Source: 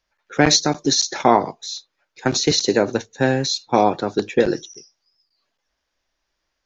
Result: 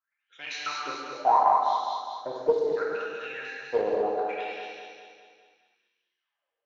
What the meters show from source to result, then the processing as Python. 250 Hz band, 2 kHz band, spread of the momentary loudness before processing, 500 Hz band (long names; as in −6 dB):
−21.5 dB, −10.0 dB, 13 LU, −7.5 dB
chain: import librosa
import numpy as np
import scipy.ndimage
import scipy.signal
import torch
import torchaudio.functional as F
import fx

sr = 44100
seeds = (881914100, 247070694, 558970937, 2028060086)

p1 = fx.wah_lfo(x, sr, hz=0.72, low_hz=450.0, high_hz=3200.0, q=14.0)
p2 = p1 + fx.echo_feedback(p1, sr, ms=204, feedback_pct=52, wet_db=-4.5, dry=0)
p3 = fx.rev_gated(p2, sr, seeds[0], gate_ms=270, shape='flat', drr_db=-4.0)
y = fx.doppler_dist(p3, sr, depth_ms=0.15)